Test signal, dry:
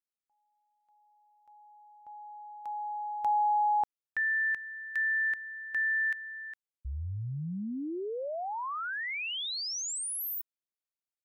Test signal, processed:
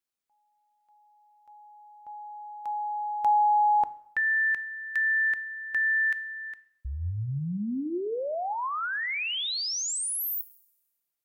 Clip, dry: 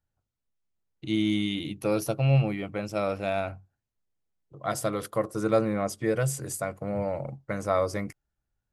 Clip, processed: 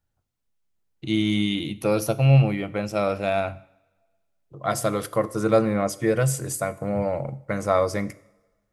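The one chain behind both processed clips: two-slope reverb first 0.63 s, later 1.6 s, from -18 dB, DRR 14.5 dB; trim +4.5 dB

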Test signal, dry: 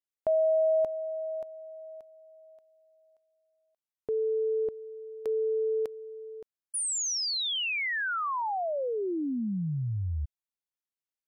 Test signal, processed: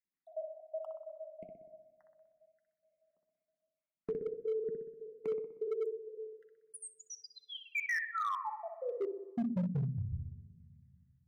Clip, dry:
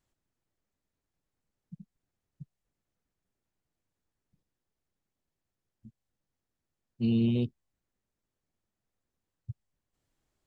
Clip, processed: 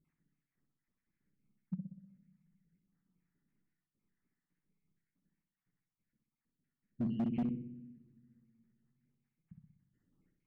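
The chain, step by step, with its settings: random holes in the spectrogram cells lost 62%; in parallel at -3 dB: peak limiter -28.5 dBFS; on the sum: FFT filter 110 Hz 0 dB, 180 Hz +15 dB, 660 Hz -11 dB, 2.1 kHz +4 dB, 3.5 kHz -18 dB, 6.1 kHz -15 dB; compression 2:1, threshold -32 dBFS; flange 1.1 Hz, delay 1.7 ms, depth 9.4 ms, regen -61%; bass shelf 140 Hz -4 dB; filtered feedback delay 62 ms, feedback 59%, low-pass 2.1 kHz, level -4 dB; simulated room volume 2400 m³, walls mixed, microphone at 0.3 m; hard clipper -31 dBFS; trim +1.5 dB

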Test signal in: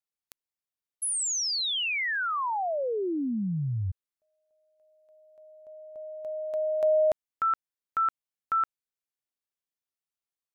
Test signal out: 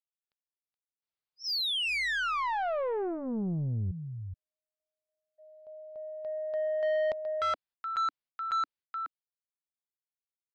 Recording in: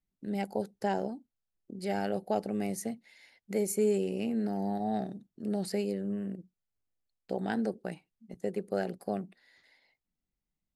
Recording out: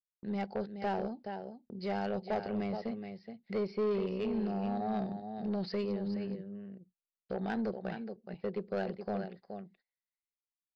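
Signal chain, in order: gate -53 dBFS, range -30 dB; on a send: delay 423 ms -9.5 dB; on the sum: resampled via 11.025 kHz; saturation -25.5 dBFS; peaking EQ 290 Hz -10 dB 0.25 oct

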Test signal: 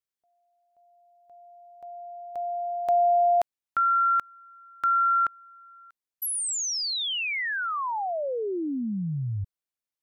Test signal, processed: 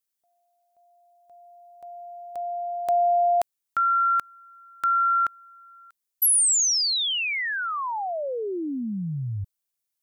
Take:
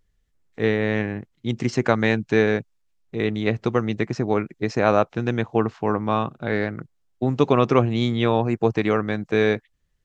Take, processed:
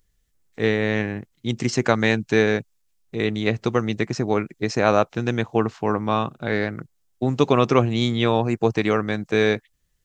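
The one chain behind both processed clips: treble shelf 5 kHz +12 dB

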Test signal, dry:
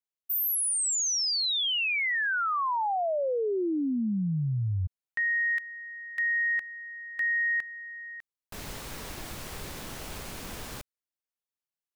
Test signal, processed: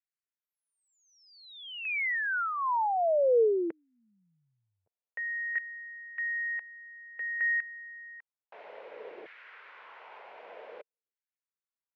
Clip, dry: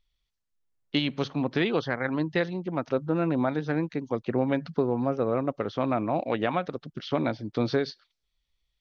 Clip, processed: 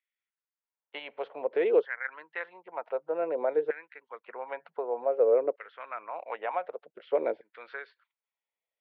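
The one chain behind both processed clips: LFO high-pass saw down 0.54 Hz 400–1800 Hz; cabinet simulation 230–2300 Hz, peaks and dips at 270 Hz -9 dB, 460 Hz +6 dB, 780 Hz -4 dB, 1.2 kHz -8 dB, 1.7 kHz -4 dB; trim -4 dB

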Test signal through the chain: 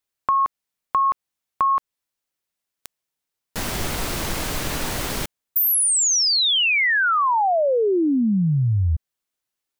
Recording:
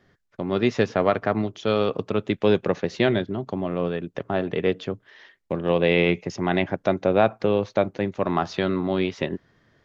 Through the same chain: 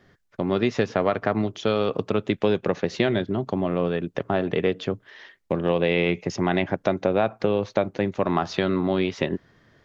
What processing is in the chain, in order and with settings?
compression 3:1, threshold -22 dBFS; trim +3.5 dB

